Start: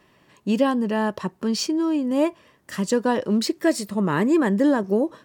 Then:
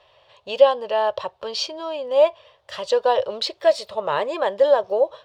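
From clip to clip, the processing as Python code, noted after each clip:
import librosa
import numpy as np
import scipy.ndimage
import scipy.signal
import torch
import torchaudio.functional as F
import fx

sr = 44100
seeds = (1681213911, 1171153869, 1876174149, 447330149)

y = fx.curve_eq(x, sr, hz=(110.0, 190.0, 300.0, 550.0, 1900.0, 3500.0, 7200.0, 14000.0), db=(0, -24, -21, 11, -3, 11, -9, -17))
y = y * 10.0 ** (-1.0 / 20.0)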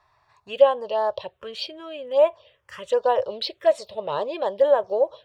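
y = fx.env_phaser(x, sr, low_hz=520.0, high_hz=4900.0, full_db=-13.5)
y = y * 10.0 ** (-1.5 / 20.0)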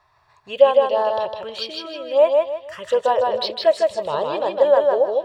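y = fx.echo_feedback(x, sr, ms=156, feedback_pct=31, wet_db=-3.0)
y = y * 10.0 ** (2.5 / 20.0)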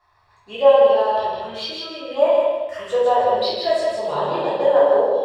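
y = fx.room_shoebox(x, sr, seeds[0], volume_m3=280.0, walls='mixed', distance_m=3.3)
y = y * 10.0 ** (-8.5 / 20.0)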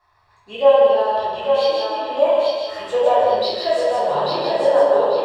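y = fx.echo_thinned(x, sr, ms=841, feedback_pct=30, hz=420.0, wet_db=-3.5)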